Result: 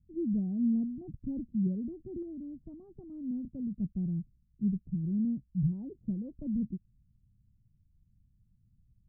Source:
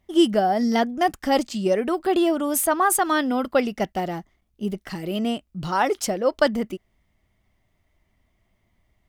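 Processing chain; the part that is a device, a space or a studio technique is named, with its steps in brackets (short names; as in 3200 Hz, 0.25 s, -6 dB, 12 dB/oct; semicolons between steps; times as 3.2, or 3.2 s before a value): the neighbour's flat through the wall (LPF 200 Hz 24 dB/oct; bell 130 Hz +7 dB 0.72 oct); 2.22–3.86 dynamic EQ 400 Hz, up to -4 dB, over -48 dBFS, Q 0.89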